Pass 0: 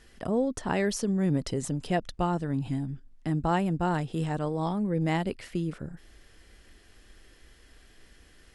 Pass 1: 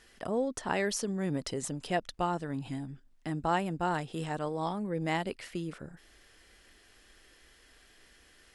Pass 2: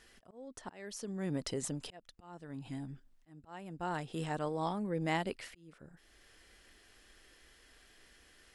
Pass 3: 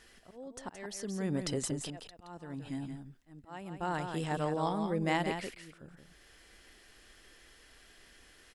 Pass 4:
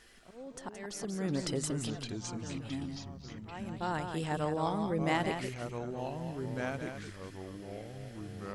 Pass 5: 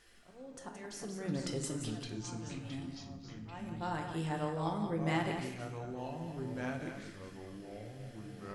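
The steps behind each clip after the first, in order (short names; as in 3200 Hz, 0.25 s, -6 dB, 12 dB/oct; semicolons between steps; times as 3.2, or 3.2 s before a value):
low shelf 300 Hz -10.5 dB
auto swell 0.749 s; gain -2 dB
echo 0.172 s -7 dB; gain +2.5 dB
echoes that change speed 0.184 s, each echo -4 st, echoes 3, each echo -6 dB
reverb RT60 0.85 s, pre-delay 6 ms, DRR 3.5 dB; gain -5 dB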